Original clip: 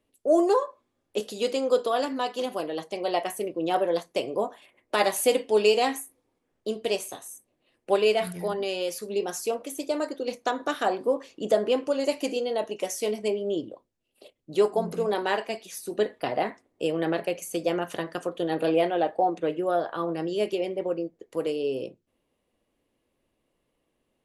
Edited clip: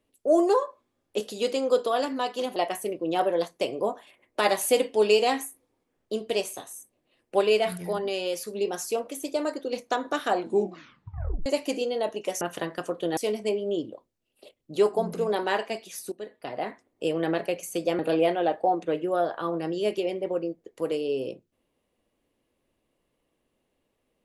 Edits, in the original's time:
2.56–3.11 cut
10.89 tape stop 1.12 s
15.91–16.88 fade in, from -18.5 dB
17.78–18.54 move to 12.96

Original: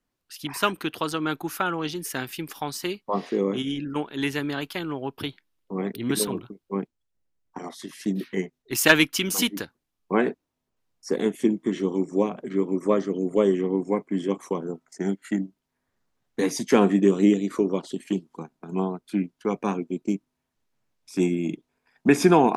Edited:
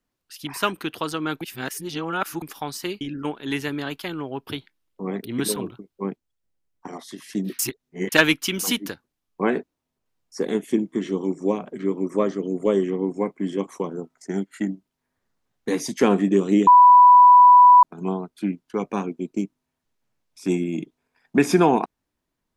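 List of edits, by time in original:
1.41–2.42 reverse
3.01–3.72 cut
8.3–8.83 reverse
17.38–18.54 bleep 988 Hz -7 dBFS

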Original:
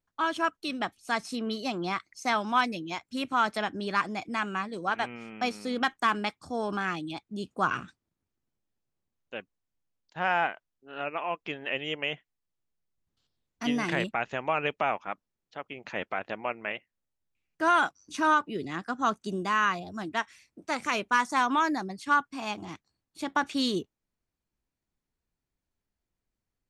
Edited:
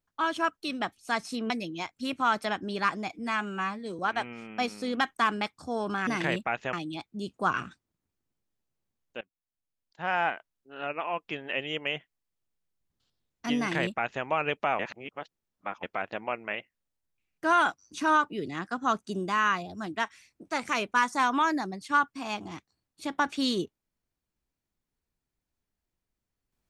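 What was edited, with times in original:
1.5–2.62 cut
4.24–4.82 stretch 1.5×
9.38–10.51 fade in, from -21 dB
13.75–14.41 copy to 6.9
14.96–16 reverse

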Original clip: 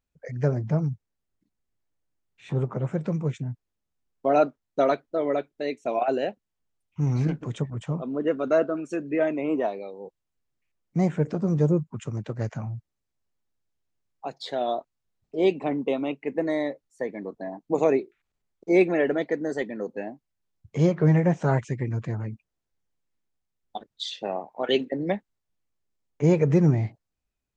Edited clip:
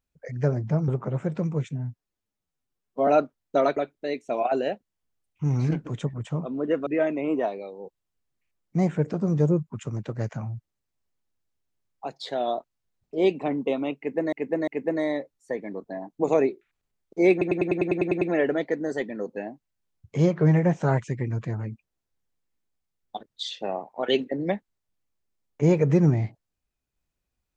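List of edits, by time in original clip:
0.88–2.57 cut
3.4–4.31 stretch 1.5×
5–5.33 cut
8.43–9.07 cut
16.18–16.53 loop, 3 plays
18.82 stutter 0.10 s, 10 plays

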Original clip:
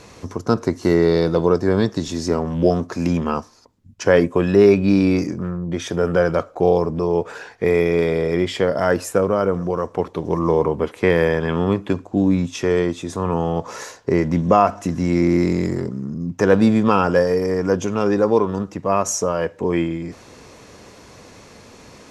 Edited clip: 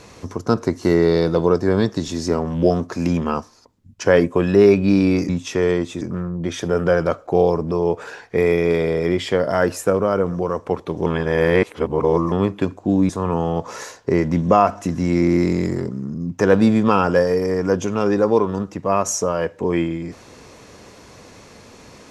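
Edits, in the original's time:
10.34–11.6 reverse
12.37–13.09 move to 5.29

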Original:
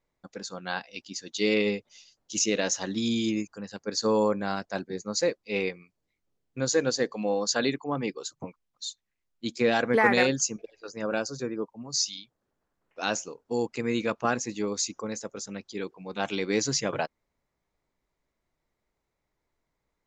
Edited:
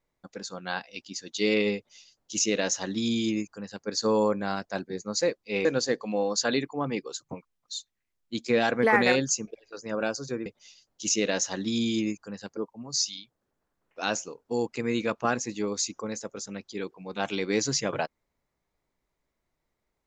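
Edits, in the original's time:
1.76–3.87 copy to 11.57
5.65–6.76 cut

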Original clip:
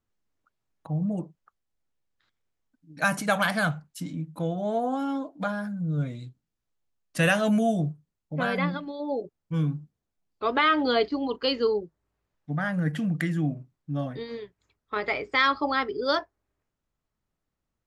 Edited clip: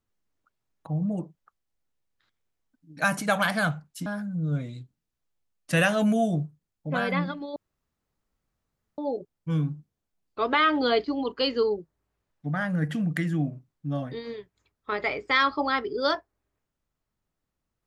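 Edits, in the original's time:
4.06–5.52 cut
9.02 insert room tone 1.42 s

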